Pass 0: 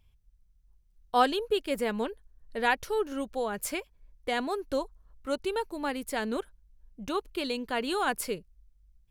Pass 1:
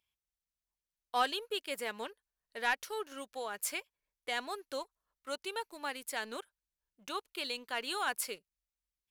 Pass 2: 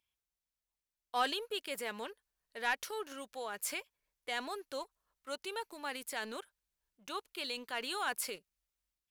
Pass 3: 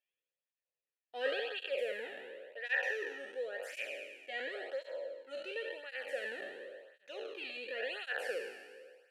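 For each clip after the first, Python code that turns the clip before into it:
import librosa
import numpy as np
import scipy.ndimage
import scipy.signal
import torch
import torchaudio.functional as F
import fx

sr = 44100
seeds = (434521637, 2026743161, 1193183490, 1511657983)

y1 = fx.highpass(x, sr, hz=1400.0, slope=6)
y1 = fx.leveller(y1, sr, passes=1)
y1 = F.gain(torch.from_numpy(y1), -4.5).numpy()
y2 = fx.transient(y1, sr, attack_db=-1, sustain_db=5)
y2 = F.gain(torch.from_numpy(y2), -1.5).numpy()
y3 = fx.spec_trails(y2, sr, decay_s=1.55)
y3 = fx.vowel_filter(y3, sr, vowel='e')
y3 = fx.flanger_cancel(y3, sr, hz=0.93, depth_ms=2.1)
y3 = F.gain(torch.from_numpy(y3), 9.5).numpy()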